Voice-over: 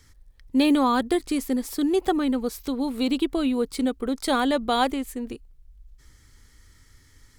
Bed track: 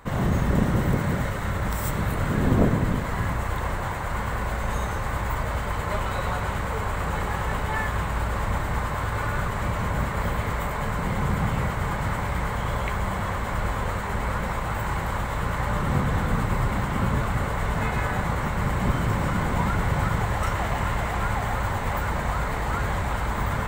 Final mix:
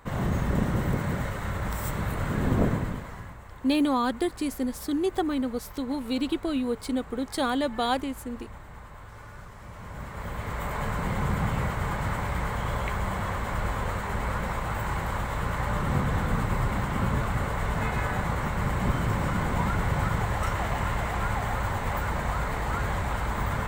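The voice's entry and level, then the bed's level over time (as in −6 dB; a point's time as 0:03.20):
3.10 s, −4.0 dB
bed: 0:02.73 −4 dB
0:03.40 −18.5 dB
0:09.59 −18.5 dB
0:10.76 −2.5 dB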